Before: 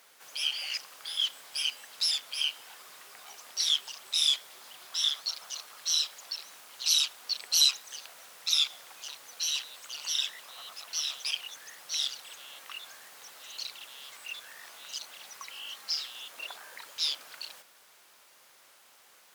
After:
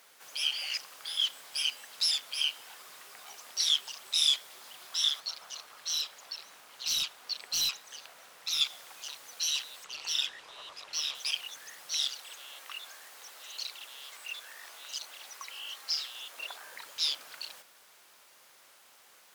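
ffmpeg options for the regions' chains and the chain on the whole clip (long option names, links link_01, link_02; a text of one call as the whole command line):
ffmpeg -i in.wav -filter_complex "[0:a]asettb=1/sr,asplit=3[link_01][link_02][link_03];[link_01]atrim=end=5.204[link_04];[link_02]atrim=start=5.2:end=8.61,asetpts=PTS-STARTPTS,afade=type=in:duration=0.004:curve=qsin,afade=type=out:start_time=3.406:duration=0.004:curve=qsin,highshelf=frequency=3900:gain=-6.5,volume=25.5dB,asoftclip=hard,volume=-25.5dB[link_05];[link_03]atrim=start=8.606[link_06];[link_04][link_05]acrossfade=duration=0.004:curve1=hsin:curve2=qsin[link_07];[link_07][link_06]acrossfade=duration=0.004:curve1=qsin:curve2=hsin,asettb=1/sr,asplit=3[link_08][link_09][link_10];[link_08]atrim=end=9.844[link_11];[link_09]atrim=start=9.84:end=11.15,asetpts=PTS-STARTPTS,afade=type=in:duration=0.004:curve=qsin,afade=type=out:start_time=1.306:duration=0.004:curve=qsin,afreqshift=-96,adynamicsmooth=sensitivity=6.5:basefreq=6200[link_12];[link_10]atrim=start=11.146[link_13];[link_11][link_12]acrossfade=duration=0.004:curve1=hsin:curve2=qsin[link_14];[link_14][link_13]acrossfade=duration=0.004:curve1=qsin:curve2=hsin,asettb=1/sr,asplit=3[link_15][link_16][link_17];[link_15]atrim=end=12.094[link_18];[link_16]atrim=start=12.09:end=16.63,asetpts=PTS-STARTPTS,afade=type=in:duration=0.004:curve=qsin,afade=type=out:start_time=4.536:duration=0.004:curve=qsin,aeval=exprs='val(0)+0.000158*(sin(2*PI*50*n/s)+sin(2*PI*2*50*n/s)/2+sin(2*PI*3*50*n/s)/3+sin(2*PI*4*50*n/s)/4+sin(2*PI*5*50*n/s)/5)':channel_layout=same,highpass=290[link_19];[link_17]atrim=start=16.626[link_20];[link_18][link_19]acrossfade=duration=0.004:curve1=hsin:curve2=qsin[link_21];[link_21][link_20]acrossfade=duration=0.004:curve1=qsin:curve2=hsin" out.wav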